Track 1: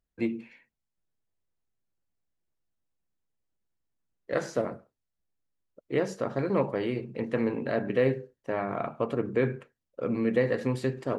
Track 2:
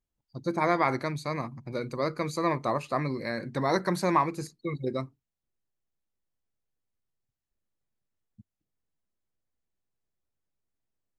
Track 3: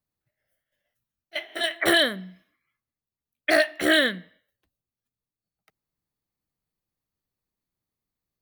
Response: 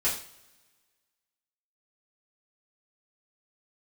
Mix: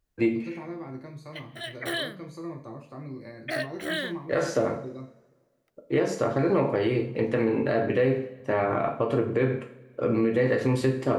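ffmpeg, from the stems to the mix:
-filter_complex "[0:a]volume=2.5dB,asplit=2[a][b];[b]volume=-8dB[c];[1:a]acrossover=split=410[d][e];[e]acompressor=threshold=-37dB:ratio=6[f];[d][f]amix=inputs=2:normalize=0,adynamicequalizer=threshold=0.00355:dfrequency=1700:dqfactor=0.7:tfrequency=1700:tqfactor=0.7:attack=5:release=100:ratio=0.375:range=2.5:mode=cutabove:tftype=highshelf,volume=-13dB,asplit=2[g][h];[h]volume=-5.5dB[i];[2:a]volume=-11dB[j];[3:a]atrim=start_sample=2205[k];[c][i]amix=inputs=2:normalize=0[l];[l][k]afir=irnorm=-1:irlink=0[m];[a][g][j][m]amix=inputs=4:normalize=0,alimiter=limit=-14dB:level=0:latency=1:release=127"

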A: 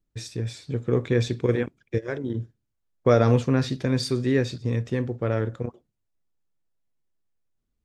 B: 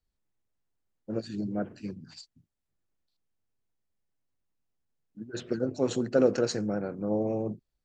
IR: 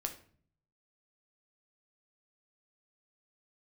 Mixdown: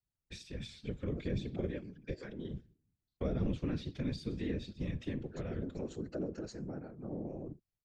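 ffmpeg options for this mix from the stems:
-filter_complex "[0:a]agate=range=-33dB:threshold=-46dB:ratio=3:detection=peak,equalizer=f=3k:t=o:w=1.5:g=12.5,adelay=150,volume=-8dB,asplit=2[a][b];[b]volume=-14dB[c];[1:a]bandreject=f=480:w=12,volume=-4.5dB[d];[2:a]atrim=start_sample=2205[e];[c][e]afir=irnorm=-1:irlink=0[f];[a][d][f]amix=inputs=3:normalize=0,acrossover=split=400[g][h];[h]acompressor=threshold=-42dB:ratio=10[i];[g][i]amix=inputs=2:normalize=0,afftfilt=real='hypot(re,im)*cos(2*PI*random(0))':imag='hypot(re,im)*sin(2*PI*random(1))':win_size=512:overlap=0.75"

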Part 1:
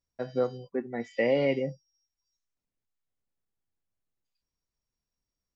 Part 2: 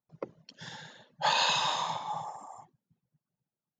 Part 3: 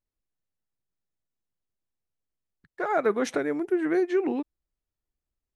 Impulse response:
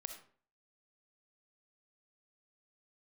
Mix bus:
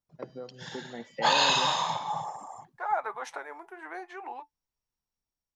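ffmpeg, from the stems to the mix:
-filter_complex "[0:a]acompressor=threshold=-35dB:ratio=2,volume=-9dB[a];[1:a]volume=-2dB[b];[2:a]flanger=delay=5.1:depth=4.7:regen=-69:speed=0.67:shape=sinusoidal,highpass=f=880:t=q:w=5.6,volume=-10.5dB[c];[a][b][c]amix=inputs=3:normalize=0,dynaudnorm=f=250:g=5:m=5.5dB"

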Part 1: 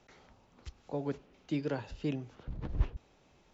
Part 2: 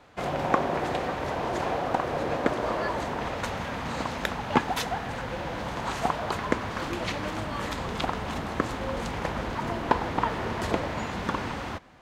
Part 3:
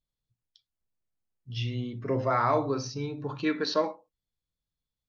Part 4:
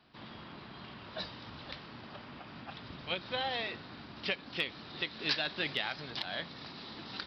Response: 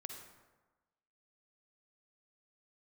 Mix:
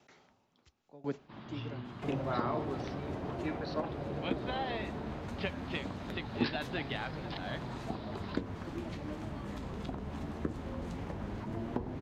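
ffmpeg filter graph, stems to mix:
-filter_complex "[0:a]highpass=120,aeval=exprs='val(0)*pow(10,-20*if(lt(mod(0.96*n/s,1),2*abs(0.96)/1000),1-mod(0.96*n/s,1)/(2*abs(0.96)/1000),(mod(0.96*n/s,1)-2*abs(0.96)/1000)/(1-2*abs(0.96)/1000))/20)':c=same,volume=1dB[a];[1:a]acrossover=split=490[b][c];[c]acompressor=threshold=-44dB:ratio=6[d];[b][d]amix=inputs=2:normalize=0,flanger=delay=6.2:depth=9.4:regen=56:speed=0.19:shape=triangular,adelay=1850,volume=-1dB[e];[2:a]lowpass=3.5k,volume=-11dB[f];[3:a]lowpass=f=1.1k:p=1,acontrast=32,adelay=1150,volume=-3.5dB[g];[a][e][f][g]amix=inputs=4:normalize=0,bandreject=f=500:w=12"

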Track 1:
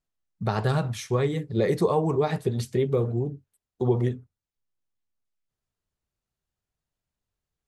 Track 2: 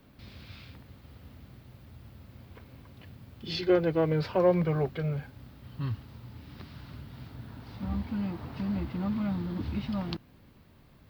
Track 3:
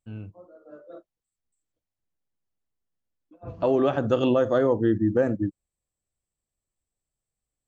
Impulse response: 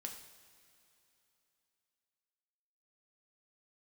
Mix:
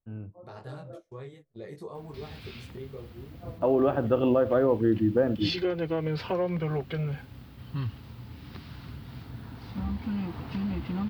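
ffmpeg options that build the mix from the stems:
-filter_complex "[0:a]flanger=delay=20:depth=2.7:speed=0.5,volume=-15.5dB[a];[1:a]bandreject=f=590:w=12,adelay=1950,volume=2.5dB[b];[2:a]lowpass=1.6k,volume=-2dB,asplit=2[c][d];[d]volume=-21.5dB[e];[a][b]amix=inputs=2:normalize=0,agate=range=-26dB:threshold=-49dB:ratio=16:detection=peak,acompressor=threshold=-28dB:ratio=2.5,volume=0dB[f];[3:a]atrim=start_sample=2205[g];[e][g]afir=irnorm=-1:irlink=0[h];[c][f][h]amix=inputs=3:normalize=0,adynamicequalizer=threshold=0.00178:dfrequency=2900:dqfactor=2.4:tfrequency=2900:tqfactor=2.4:attack=5:release=100:ratio=0.375:range=2.5:mode=boostabove:tftype=bell"

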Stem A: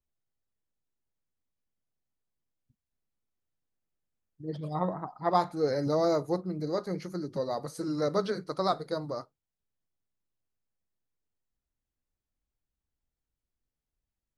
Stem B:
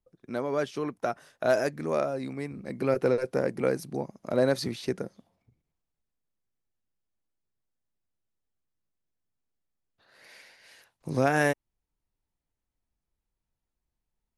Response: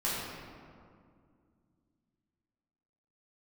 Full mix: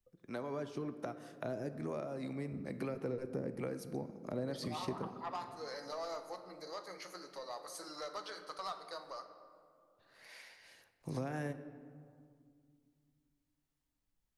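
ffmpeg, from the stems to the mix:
-filter_complex "[0:a]highpass=950,acompressor=threshold=-45dB:ratio=2,asoftclip=type=tanh:threshold=-35dB,volume=0dB,asplit=2[a][b];[b]volume=-14dB[c];[1:a]acrossover=split=400[d][e];[e]acompressor=threshold=-36dB:ratio=6[f];[d][f]amix=inputs=2:normalize=0,acrossover=split=520[g][h];[g]aeval=exprs='val(0)*(1-0.5/2+0.5/2*cos(2*PI*1.2*n/s))':c=same[i];[h]aeval=exprs='val(0)*(1-0.5/2-0.5/2*cos(2*PI*1.2*n/s))':c=same[j];[i][j]amix=inputs=2:normalize=0,acompressor=threshold=-35dB:ratio=2,volume=-3dB,asplit=2[k][l];[l]volume=-17.5dB[m];[2:a]atrim=start_sample=2205[n];[c][m]amix=inputs=2:normalize=0[o];[o][n]afir=irnorm=-1:irlink=0[p];[a][k][p]amix=inputs=3:normalize=0"

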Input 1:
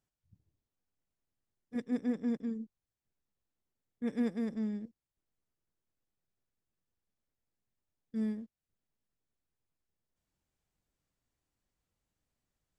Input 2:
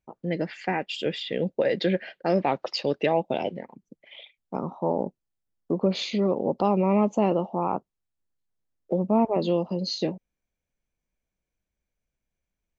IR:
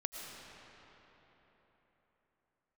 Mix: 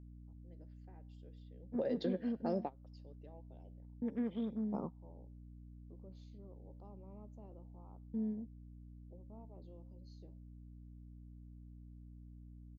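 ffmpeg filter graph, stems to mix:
-filter_complex "[0:a]afwtdn=0.00316,highshelf=f=2.5k:g=-9,aeval=exprs='val(0)+0.002*(sin(2*PI*60*n/s)+sin(2*PI*2*60*n/s)/2+sin(2*PI*3*60*n/s)/3+sin(2*PI*4*60*n/s)/4+sin(2*PI*5*60*n/s)/5)':c=same,volume=1.5dB,asplit=2[a][b];[1:a]equalizer=f=2.3k:t=o:w=1.2:g=-14.5,flanger=delay=8.4:depth=3.1:regen=-86:speed=0.69:shape=triangular,adelay=200,volume=0dB[c];[b]apad=whole_len=572445[d];[c][d]sidechaingate=range=-30dB:threshold=-42dB:ratio=16:detection=peak[e];[a][e]amix=inputs=2:normalize=0,acompressor=threshold=-39dB:ratio=2"

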